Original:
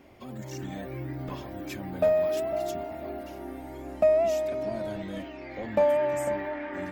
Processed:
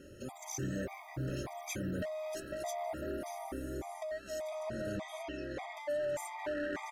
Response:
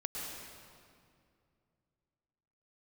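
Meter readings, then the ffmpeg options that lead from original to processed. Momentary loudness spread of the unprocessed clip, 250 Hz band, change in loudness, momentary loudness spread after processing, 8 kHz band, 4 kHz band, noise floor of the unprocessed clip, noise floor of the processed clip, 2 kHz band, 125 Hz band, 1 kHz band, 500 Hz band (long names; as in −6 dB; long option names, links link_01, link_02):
16 LU, −5.0 dB, −10.5 dB, 5 LU, +2.0 dB, −3.0 dB, −42 dBFS, −52 dBFS, −4.0 dB, −3.5 dB, −7.5 dB, −12.5 dB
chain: -af "equalizer=frequency=250:width_type=o:width=0.33:gain=-5,equalizer=frequency=6300:width_type=o:width=0.33:gain=10,equalizer=frequency=10000:width_type=o:width=0.33:gain=10,acompressor=threshold=-32dB:ratio=6,volume=34dB,asoftclip=hard,volume=-34dB,aresample=32000,aresample=44100,afftfilt=real='re*gt(sin(2*PI*1.7*pts/sr)*(1-2*mod(floor(b*sr/1024/640),2)),0)':imag='im*gt(sin(2*PI*1.7*pts/sr)*(1-2*mod(floor(b*sr/1024/640),2)),0)':win_size=1024:overlap=0.75,volume=3dB"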